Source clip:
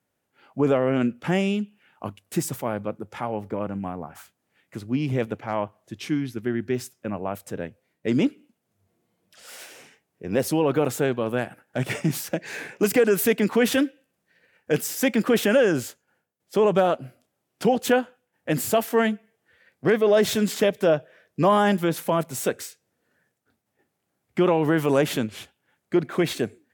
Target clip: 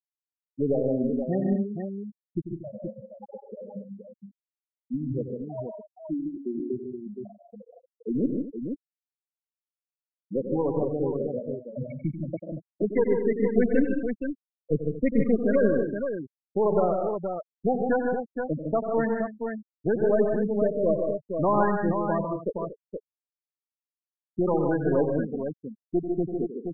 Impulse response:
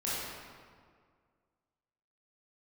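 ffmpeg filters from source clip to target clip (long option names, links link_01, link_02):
-filter_complex "[0:a]aeval=exprs='0.447*(cos(1*acos(clip(val(0)/0.447,-1,1)))-cos(1*PI/2))+0.0501*(cos(4*acos(clip(val(0)/0.447,-1,1)))-cos(4*PI/2))':channel_layout=same,asettb=1/sr,asplit=3[link_01][link_02][link_03];[link_01]atrim=end=13.584[link_04];[link_02]atrim=start=13.58:end=15.26,asetpts=PTS-STARTPTS,afade=type=in:duration=0.004:curve=qsin,afade=type=out:start_time=1.676:duration=0.004:curve=qsin,lowshelf=frequency=180:gain=8[link_05];[link_03]atrim=start=15.256[link_06];[link_04][link_05]acrossfade=duration=0.004:curve1=hsin:curve2=qsin[link_07];[link_07][link_06]acrossfade=duration=0.004:curve1=qsin:curve2=hsin,afftfilt=real='re*gte(hypot(re,im),0.316)':imag='im*gte(hypot(re,im),0.316)':win_size=1024:overlap=0.75,aecho=1:1:92|133|153|189|232|472:0.316|0.237|0.531|0.126|0.2|0.473,volume=-5dB"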